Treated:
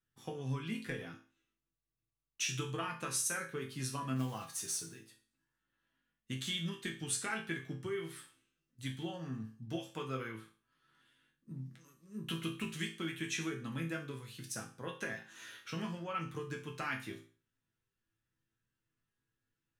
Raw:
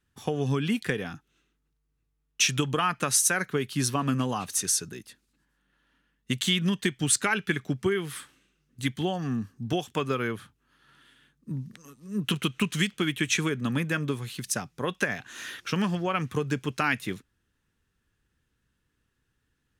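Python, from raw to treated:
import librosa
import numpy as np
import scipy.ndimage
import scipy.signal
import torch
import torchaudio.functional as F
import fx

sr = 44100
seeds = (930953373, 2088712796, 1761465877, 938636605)

y = fx.quant_float(x, sr, bits=2, at=(4.16, 4.97))
y = fx.resonator_bank(y, sr, root=45, chord='minor', decay_s=0.38)
y = F.gain(torch.from_numpy(y), 3.0).numpy()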